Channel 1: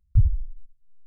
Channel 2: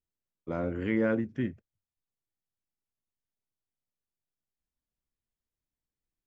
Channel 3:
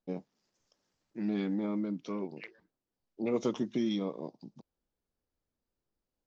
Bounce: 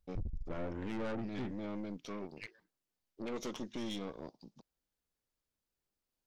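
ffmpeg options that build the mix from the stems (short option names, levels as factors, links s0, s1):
-filter_complex "[0:a]alimiter=limit=0.119:level=0:latency=1:release=56,volume=0.473[s0];[1:a]volume=0.75,asplit=2[s1][s2];[2:a]tiltshelf=f=970:g=-4.5,volume=1[s3];[s2]apad=whole_len=276313[s4];[s3][s4]sidechaincompress=threshold=0.0126:ratio=4:attack=50:release=217[s5];[s0][s1][s5]amix=inputs=3:normalize=0,aeval=exprs='(tanh(63.1*val(0)+0.6)-tanh(0.6))/63.1':c=same"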